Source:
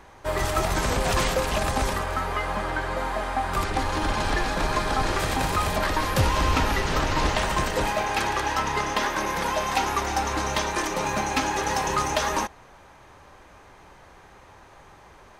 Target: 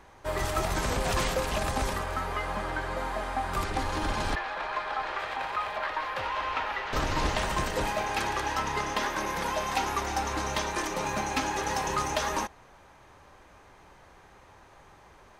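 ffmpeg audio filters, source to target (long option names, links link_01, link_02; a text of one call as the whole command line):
ffmpeg -i in.wav -filter_complex "[0:a]asettb=1/sr,asplit=3[link_01][link_02][link_03];[link_01]atrim=end=4.354[link_04];[link_02]atrim=start=4.35:end=6.93,asetpts=PTS-STARTPTS,afade=type=in:duration=0.004:curve=qsin,afade=type=out:start_time=2.576:duration=0.004:curve=qsin,acrossover=split=530 3600:gain=0.0891 1 0.0794[link_05][link_06][link_07];[link_05][link_06][link_07]amix=inputs=3:normalize=0[link_08];[link_03]atrim=start=6.926[link_09];[link_04][link_08]acrossfade=duration=0.004:curve1=hsin:curve2=qsin[link_10];[link_10][link_09]acrossfade=duration=0.004:curve1=qsin:curve2=hsin,volume=-4.5dB" out.wav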